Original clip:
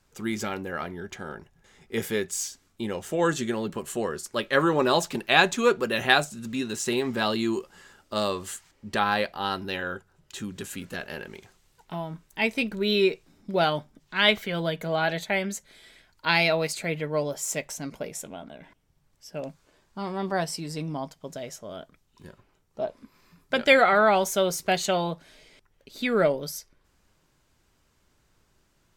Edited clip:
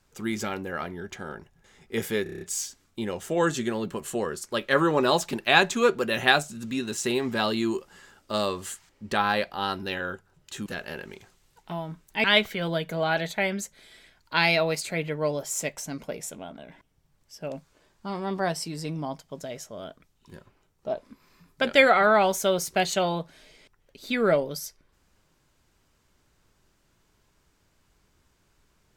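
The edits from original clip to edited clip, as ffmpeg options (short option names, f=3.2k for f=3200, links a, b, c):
-filter_complex "[0:a]asplit=9[a][b][c][d][e][f][g][h][i];[a]atrim=end=2.262[j];[b]atrim=start=2.228:end=2.262[k];[c]atrim=start=2.228:end=2.262[l];[d]atrim=start=2.228:end=2.262[m];[e]atrim=start=2.228:end=2.262[n];[f]atrim=start=2.228:end=2.262[o];[g]atrim=start=2.228:end=10.482[p];[h]atrim=start=10.878:end=12.462[q];[i]atrim=start=14.158[r];[j][k]acrossfade=d=0.004:c1=hsin:c2=hsin[s];[s][l]acrossfade=d=0.004:c1=hsin:c2=hsin[t];[t][m]acrossfade=d=0.004:c1=hsin:c2=hsin[u];[u][n]acrossfade=d=0.004:c1=hsin:c2=hsin[v];[v][o]acrossfade=d=0.004:c1=hsin:c2=hsin[w];[w][p]acrossfade=d=0.004:c1=hsin:c2=hsin[x];[x][q]acrossfade=d=0.004:c1=hsin:c2=hsin[y];[y][r]acrossfade=d=0.004:c1=hsin:c2=hsin"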